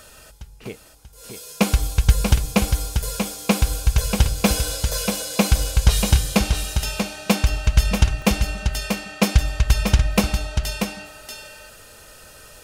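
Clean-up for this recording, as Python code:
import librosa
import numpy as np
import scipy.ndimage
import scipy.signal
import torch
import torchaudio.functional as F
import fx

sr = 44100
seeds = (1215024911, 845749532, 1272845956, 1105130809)

y = fx.fix_interpolate(x, sr, at_s=(8.22,), length_ms=1.1)
y = fx.fix_echo_inverse(y, sr, delay_ms=637, level_db=-6.0)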